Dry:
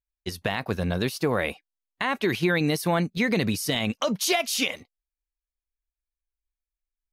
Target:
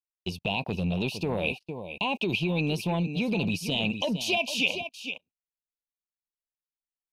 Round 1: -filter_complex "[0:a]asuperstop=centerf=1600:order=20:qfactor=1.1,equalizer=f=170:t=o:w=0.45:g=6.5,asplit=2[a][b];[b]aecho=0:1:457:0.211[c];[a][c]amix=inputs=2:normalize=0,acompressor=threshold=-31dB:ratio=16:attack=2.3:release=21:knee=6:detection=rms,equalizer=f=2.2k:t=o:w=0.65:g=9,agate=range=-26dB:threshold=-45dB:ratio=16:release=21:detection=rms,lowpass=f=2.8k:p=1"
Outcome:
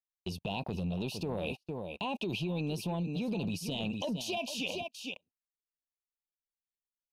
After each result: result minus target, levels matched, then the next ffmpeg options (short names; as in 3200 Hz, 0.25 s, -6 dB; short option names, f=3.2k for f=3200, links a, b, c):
compressor: peak gain reduction +6.5 dB; 2000 Hz band -4.5 dB
-filter_complex "[0:a]asuperstop=centerf=1600:order=20:qfactor=1.1,equalizer=f=170:t=o:w=0.45:g=6.5,asplit=2[a][b];[b]aecho=0:1:457:0.211[c];[a][c]amix=inputs=2:normalize=0,acompressor=threshold=-24dB:ratio=16:attack=2.3:release=21:knee=6:detection=rms,equalizer=f=2.2k:t=o:w=0.65:g=9,agate=range=-26dB:threshold=-45dB:ratio=16:release=21:detection=rms,lowpass=f=2.8k:p=1"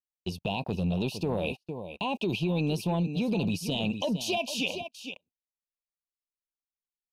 2000 Hz band -5.0 dB
-filter_complex "[0:a]asuperstop=centerf=1600:order=20:qfactor=1.1,equalizer=f=170:t=o:w=0.45:g=6.5,asplit=2[a][b];[b]aecho=0:1:457:0.211[c];[a][c]amix=inputs=2:normalize=0,acompressor=threshold=-24dB:ratio=16:attack=2.3:release=21:knee=6:detection=rms,equalizer=f=2.2k:t=o:w=0.65:g=20.5,agate=range=-26dB:threshold=-45dB:ratio=16:release=21:detection=rms,lowpass=f=2.8k:p=1"